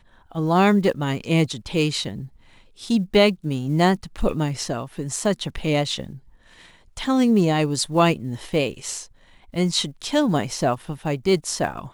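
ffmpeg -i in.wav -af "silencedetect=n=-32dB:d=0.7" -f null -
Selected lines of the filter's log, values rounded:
silence_start: 6.16
silence_end: 6.97 | silence_duration: 0.82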